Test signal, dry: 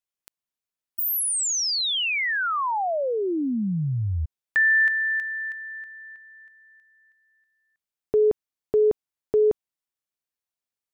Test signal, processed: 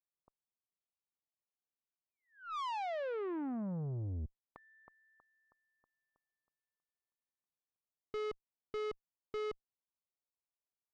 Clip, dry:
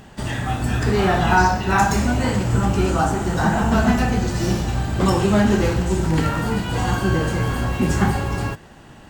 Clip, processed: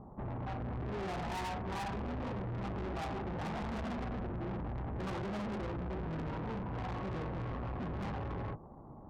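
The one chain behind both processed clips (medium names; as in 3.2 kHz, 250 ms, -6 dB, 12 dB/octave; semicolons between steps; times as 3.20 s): steep low-pass 1.2 kHz 72 dB/octave; valve stage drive 31 dB, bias 0.3; trim -6 dB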